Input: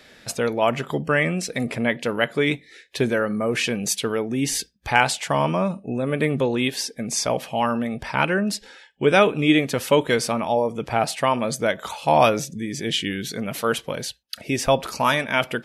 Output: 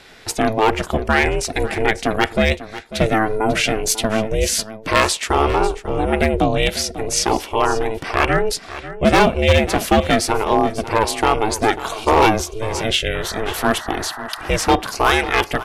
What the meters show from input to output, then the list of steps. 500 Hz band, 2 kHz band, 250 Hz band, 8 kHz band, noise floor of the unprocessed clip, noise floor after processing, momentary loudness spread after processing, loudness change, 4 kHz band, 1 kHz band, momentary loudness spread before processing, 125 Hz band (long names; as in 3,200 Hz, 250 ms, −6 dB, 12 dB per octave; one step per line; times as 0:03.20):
+3.5 dB, +4.0 dB, +2.5 dB, +5.0 dB, −53 dBFS, −37 dBFS, 7 LU, +4.0 dB, +5.0 dB, +5.5 dB, 8 LU, +4.5 dB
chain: ring modulation 220 Hz
hard clipping −14.5 dBFS, distortion −14 dB
sound drawn into the spectrogram noise, 0:13.14–0:14.68, 610–2,000 Hz −41 dBFS
single-tap delay 545 ms −14.5 dB
level +8 dB